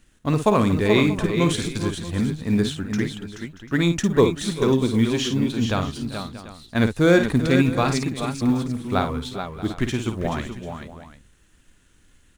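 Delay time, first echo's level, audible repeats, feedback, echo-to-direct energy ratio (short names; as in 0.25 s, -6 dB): 53 ms, -8.0 dB, 5, no steady repeat, -4.0 dB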